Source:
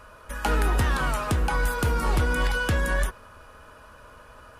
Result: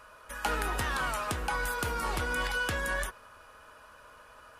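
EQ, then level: bass shelf 380 Hz -11 dB; -2.5 dB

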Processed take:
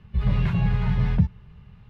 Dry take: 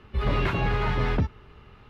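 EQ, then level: resonant low shelf 230 Hz +9 dB, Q 3; band-stop 1.3 kHz, Q 8.9; -6.5 dB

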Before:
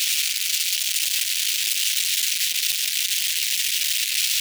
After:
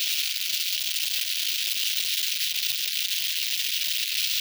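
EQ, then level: ten-band graphic EQ 125 Hz -12 dB, 500 Hz -8 dB, 1 kHz -3 dB, 2 kHz -7 dB, 8 kHz -11 dB, 16 kHz -6 dB; +2.5 dB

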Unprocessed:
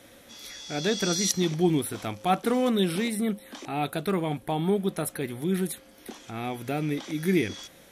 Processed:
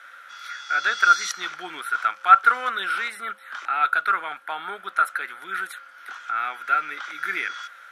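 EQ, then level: resonant high-pass 1.4 kHz, resonance Q 14; low-pass 1.9 kHz 6 dB/octave; +5.0 dB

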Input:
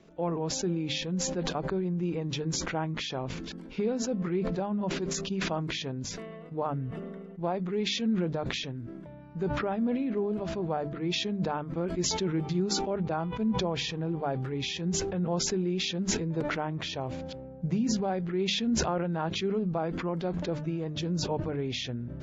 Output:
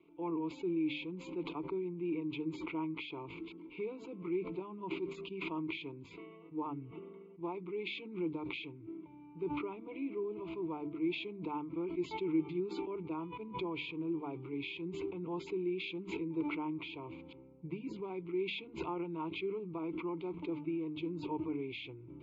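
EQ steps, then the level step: vowel filter u; static phaser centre 1.2 kHz, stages 8; +10.5 dB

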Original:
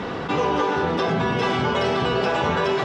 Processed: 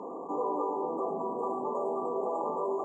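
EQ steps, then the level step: high-pass 270 Hz 24 dB/octave; brick-wall FIR band-stop 1.2–6.7 kHz; distance through air 76 m; -8.5 dB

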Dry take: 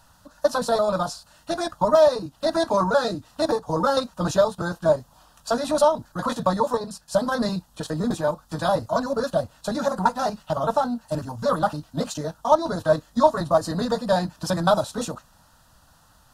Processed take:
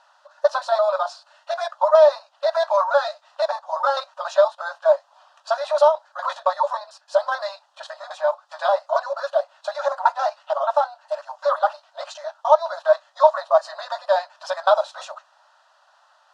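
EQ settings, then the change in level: brick-wall FIR high-pass 540 Hz; distance through air 120 m; treble shelf 6.7 kHz -6.5 dB; +3.5 dB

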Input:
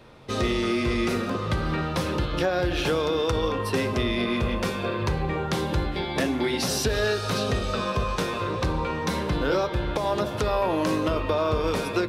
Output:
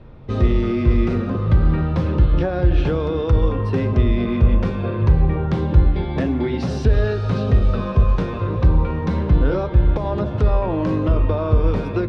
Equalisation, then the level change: distance through air 69 m; RIAA curve playback; -1.0 dB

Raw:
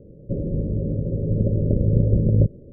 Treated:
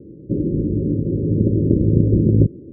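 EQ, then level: high-pass 55 Hz; resonant low-pass 330 Hz, resonance Q 3.8; +1.5 dB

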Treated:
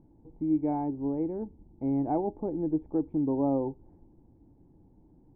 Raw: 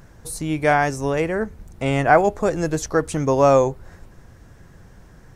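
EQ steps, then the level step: cascade formant filter u; 0.0 dB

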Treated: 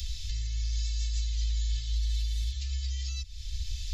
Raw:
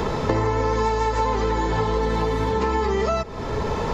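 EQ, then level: inverse Chebyshev band-stop 230–1000 Hz, stop band 70 dB; 0.0 dB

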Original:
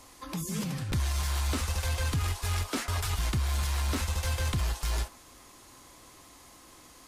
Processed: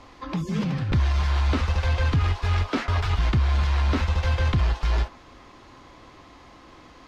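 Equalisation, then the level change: distance through air 230 m; +8.0 dB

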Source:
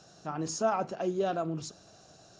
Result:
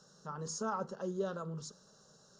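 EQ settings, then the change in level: static phaser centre 470 Hz, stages 8; -3.0 dB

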